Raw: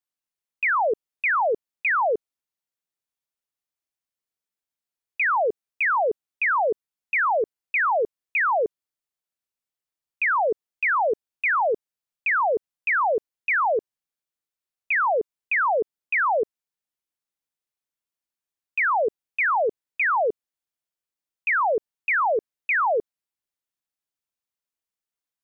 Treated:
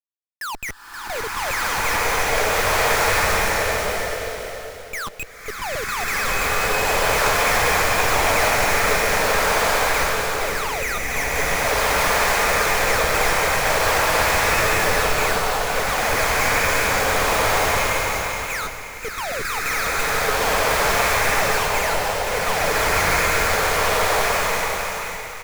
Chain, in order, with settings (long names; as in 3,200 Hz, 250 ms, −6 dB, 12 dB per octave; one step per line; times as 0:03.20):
slices reordered back to front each 137 ms, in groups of 3
noise reduction from a noise print of the clip's start 26 dB
noise gate with hold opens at −42 dBFS
high-pass filter 1,500 Hz 12 dB per octave
flanger 0.35 Hz, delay 2.6 ms, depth 7.2 ms, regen +71%
comparator with hysteresis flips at −47.5 dBFS
single-tap delay 526 ms −7.5 dB
slow-attack reverb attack 1,570 ms, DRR −11 dB
level +8 dB